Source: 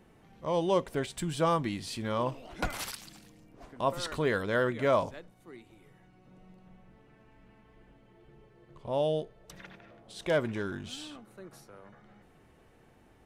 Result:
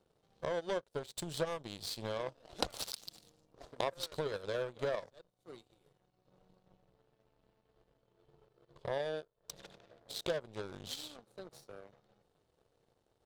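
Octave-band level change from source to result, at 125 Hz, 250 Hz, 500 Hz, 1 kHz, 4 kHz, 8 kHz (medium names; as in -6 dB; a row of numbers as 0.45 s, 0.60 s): -11.5 dB, -13.0 dB, -7.5 dB, -10.5 dB, -2.0 dB, -3.0 dB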